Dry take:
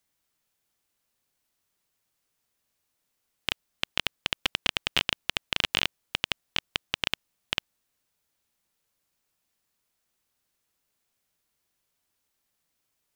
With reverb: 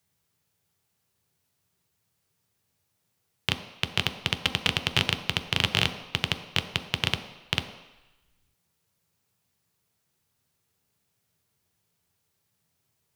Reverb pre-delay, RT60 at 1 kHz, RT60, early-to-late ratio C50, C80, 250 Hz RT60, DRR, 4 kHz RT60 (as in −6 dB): 3 ms, 1.1 s, 1.0 s, 10.5 dB, 12.0 dB, 0.80 s, 6.0 dB, 1.0 s